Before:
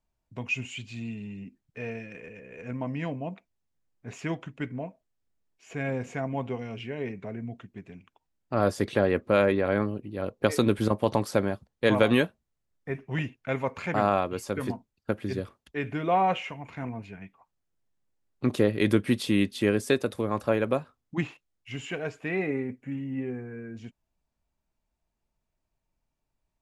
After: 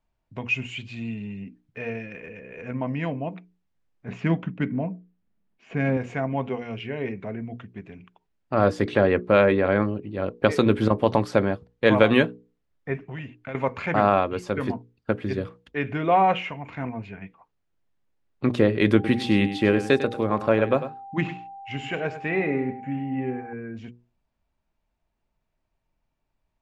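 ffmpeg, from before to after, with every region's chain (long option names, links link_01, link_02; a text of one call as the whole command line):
ffmpeg -i in.wav -filter_complex "[0:a]asettb=1/sr,asplit=3[link_01][link_02][link_03];[link_01]atrim=end=4.084[link_04];[link_02]atrim=start=4.08:end=5.97,asetpts=PTS-STARTPTS,afade=type=in:duration=0.004:curve=qsin,afade=type=out:start_time=1.886:duration=0.004:curve=qsin,adynamicsmooth=sensitivity=7.5:basefreq=4600,equalizer=frequency=200:width=2.3:gain=13.5[link_05];[link_03]atrim=start=5.966[link_06];[link_04][link_05]acrossfade=duration=0.004:curve1=hsin:curve2=qsin[link_07];[link_07][link_06]acrossfade=duration=0.004:curve1=qsin:curve2=hsin,asettb=1/sr,asplit=3[link_08][link_09][link_10];[link_08]atrim=end=13.034[link_11];[link_09]atrim=start=13.03:end=13.55,asetpts=PTS-STARTPTS,afade=type=in:duration=0.004:curve=qsin,afade=type=out:start_time=0.516:duration=0.004:curve=qsin,bandreject=frequency=5400:width=9.9,acompressor=threshold=-36dB:ratio=5:attack=3.2:release=140:knee=1:detection=peak[link_12];[link_10]atrim=start=13.546[link_13];[link_11][link_12]acrossfade=duration=0.004:curve1=hsin:curve2=qsin[link_14];[link_14][link_13]acrossfade=duration=0.004:curve1=qsin:curve2=hsin,asettb=1/sr,asplit=3[link_15][link_16][link_17];[link_15]atrim=end=18.944[link_18];[link_16]atrim=start=18.94:end=23.53,asetpts=PTS-STARTPTS,afade=type=in:duration=0.004:curve=qsin,afade=type=out:start_time=4.586:duration=0.004:curve=qsin,aeval=exprs='val(0)+0.00562*sin(2*PI*790*n/s)':channel_layout=same,aecho=1:1:100:0.266,atrim=end_sample=202419[link_19];[link_17]atrim=start=23.526[link_20];[link_18][link_19]acrossfade=duration=0.004:curve1=hsin:curve2=qsin[link_21];[link_21][link_20]acrossfade=duration=0.004:curve1=qsin:curve2=hsin,lowpass=2800,aemphasis=mode=production:type=50kf,bandreject=frequency=60:width_type=h:width=6,bandreject=frequency=120:width_type=h:width=6,bandreject=frequency=180:width_type=h:width=6,bandreject=frequency=240:width_type=h:width=6,bandreject=frequency=300:width_type=h:width=6,bandreject=frequency=360:width_type=h:width=6,bandreject=frequency=420:width_type=h:width=6,bandreject=frequency=480:width_type=h:width=6,volume=4.5dB" out.wav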